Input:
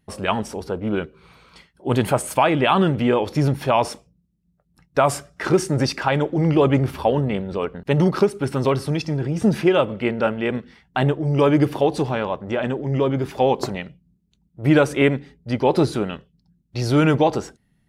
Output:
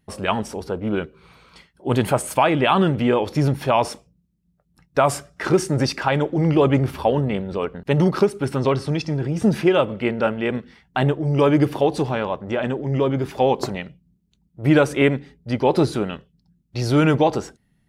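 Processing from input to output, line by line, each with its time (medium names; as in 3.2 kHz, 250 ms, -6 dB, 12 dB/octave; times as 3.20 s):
8.56–9.21 s: low-pass 6.3 kHz -> 11 kHz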